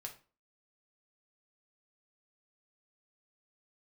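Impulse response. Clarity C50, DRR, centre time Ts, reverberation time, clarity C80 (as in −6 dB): 11.5 dB, 1.5 dB, 12 ms, 0.35 s, 17.5 dB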